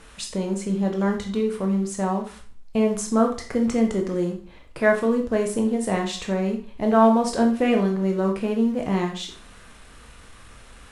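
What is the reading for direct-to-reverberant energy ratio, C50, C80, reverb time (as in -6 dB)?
2.0 dB, 8.5 dB, 13.0 dB, 0.45 s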